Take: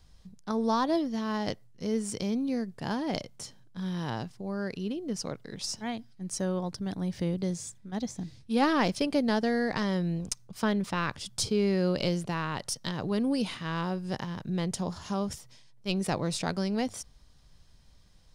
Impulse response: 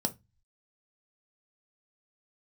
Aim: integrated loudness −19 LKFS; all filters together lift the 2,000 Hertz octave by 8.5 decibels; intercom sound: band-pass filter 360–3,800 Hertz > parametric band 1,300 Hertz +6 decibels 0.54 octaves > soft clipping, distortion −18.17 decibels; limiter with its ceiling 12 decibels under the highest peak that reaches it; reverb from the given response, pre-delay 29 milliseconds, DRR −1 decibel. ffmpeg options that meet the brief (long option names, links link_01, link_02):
-filter_complex "[0:a]equalizer=frequency=2000:width_type=o:gain=8.5,alimiter=limit=-23.5dB:level=0:latency=1,asplit=2[link_01][link_02];[1:a]atrim=start_sample=2205,adelay=29[link_03];[link_02][link_03]afir=irnorm=-1:irlink=0,volume=-3.5dB[link_04];[link_01][link_04]amix=inputs=2:normalize=0,highpass=360,lowpass=3800,equalizer=frequency=1300:width_type=o:width=0.54:gain=6,asoftclip=threshold=-21dB,volume=13dB"